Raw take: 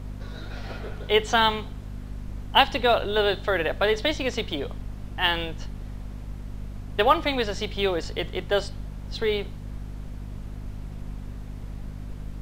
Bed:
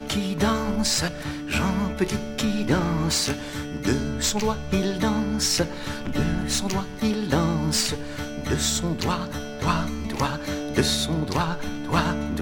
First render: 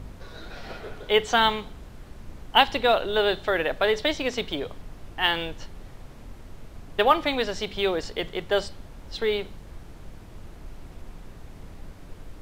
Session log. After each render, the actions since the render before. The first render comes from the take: de-hum 50 Hz, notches 5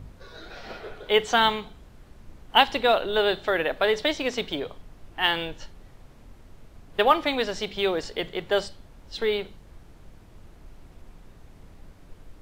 noise print and reduce 6 dB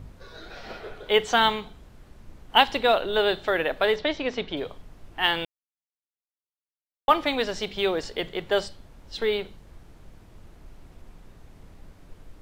3.96–4.57 s: distance through air 150 m; 5.45–7.08 s: mute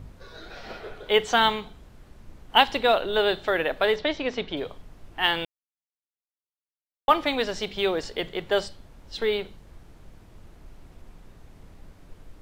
no audible change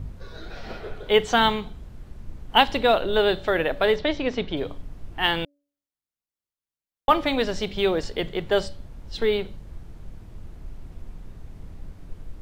bass shelf 270 Hz +9.5 dB; de-hum 286.2 Hz, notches 2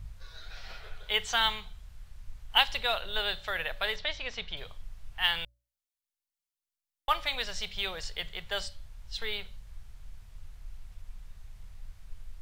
amplifier tone stack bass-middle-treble 10-0-10; hum notches 60/120 Hz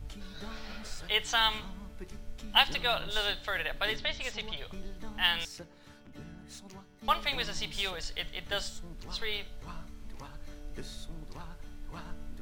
add bed -23.5 dB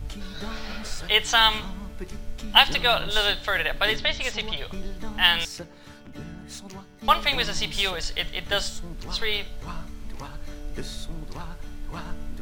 trim +8.5 dB; peak limiter -1 dBFS, peak gain reduction 1.5 dB

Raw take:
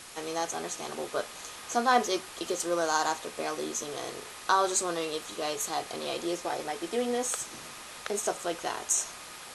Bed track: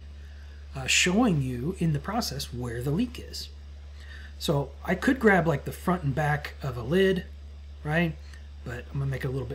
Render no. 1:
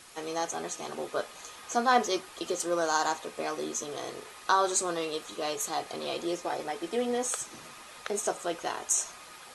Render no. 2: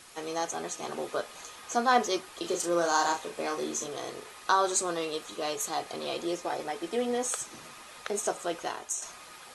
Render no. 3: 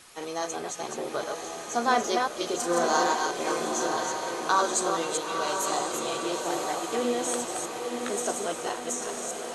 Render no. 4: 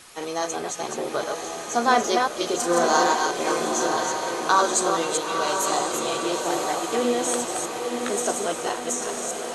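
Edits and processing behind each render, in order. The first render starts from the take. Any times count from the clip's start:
noise reduction 6 dB, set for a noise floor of -45 dBFS
0.83–1.44 s: three bands compressed up and down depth 40%; 2.40–3.88 s: doubling 35 ms -5.5 dB; 8.61–9.02 s: fade out, to -9.5 dB
chunks repeated in reverse 207 ms, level -4 dB; echo that smears into a reverb 970 ms, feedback 58%, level -5 dB
trim +4.5 dB

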